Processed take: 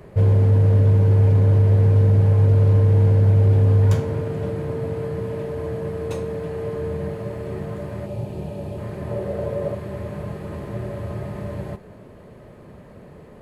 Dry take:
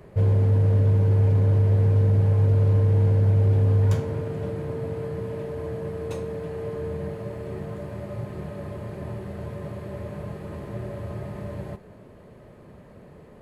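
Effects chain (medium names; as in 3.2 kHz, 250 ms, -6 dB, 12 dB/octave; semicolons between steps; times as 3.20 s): 8.06–8.78 s: time-frequency box 990–2300 Hz -9 dB; 9.11–9.75 s: peaking EQ 530 Hz +12.5 dB 0.69 oct; trim +4 dB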